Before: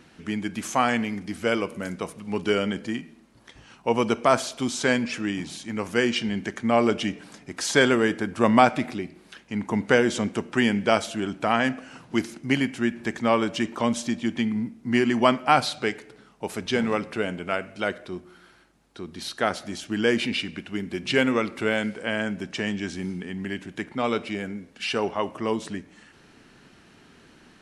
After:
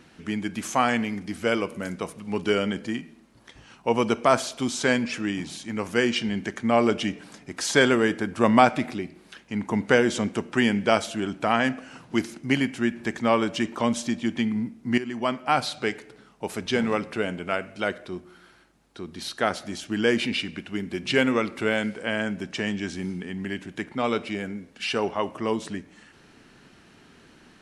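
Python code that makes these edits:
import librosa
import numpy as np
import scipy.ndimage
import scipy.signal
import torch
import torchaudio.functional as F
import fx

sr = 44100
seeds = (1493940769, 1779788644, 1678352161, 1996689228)

y = fx.edit(x, sr, fx.fade_in_from(start_s=14.98, length_s=0.97, floor_db=-13.0), tone=tone)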